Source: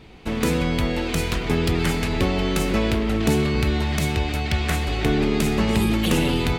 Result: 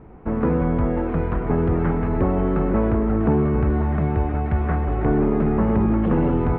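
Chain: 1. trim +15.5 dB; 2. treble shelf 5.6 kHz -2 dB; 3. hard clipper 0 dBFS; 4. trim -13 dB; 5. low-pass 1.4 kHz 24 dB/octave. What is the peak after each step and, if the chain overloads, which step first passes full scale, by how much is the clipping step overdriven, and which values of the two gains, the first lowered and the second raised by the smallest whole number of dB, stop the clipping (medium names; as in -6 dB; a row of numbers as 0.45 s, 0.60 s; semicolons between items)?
+5.5 dBFS, +5.5 dBFS, 0.0 dBFS, -13.0 dBFS, -11.5 dBFS; step 1, 5.5 dB; step 1 +9.5 dB, step 4 -7 dB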